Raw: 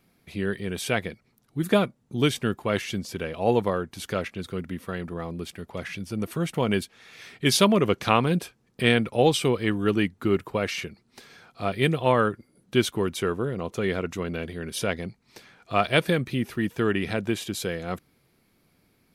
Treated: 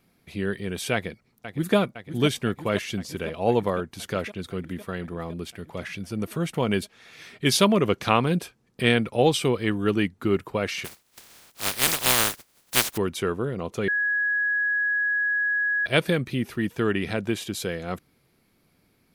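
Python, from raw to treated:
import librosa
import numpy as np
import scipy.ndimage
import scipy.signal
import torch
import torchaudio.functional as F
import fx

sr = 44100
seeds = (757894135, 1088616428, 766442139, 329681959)

y = fx.echo_throw(x, sr, start_s=0.93, length_s=0.83, ms=510, feedback_pct=75, wet_db=-11.5)
y = fx.spec_flatten(y, sr, power=0.14, at=(10.84, 12.96), fade=0.02)
y = fx.edit(y, sr, fx.bleep(start_s=13.88, length_s=1.98, hz=1670.0, db=-21.0), tone=tone)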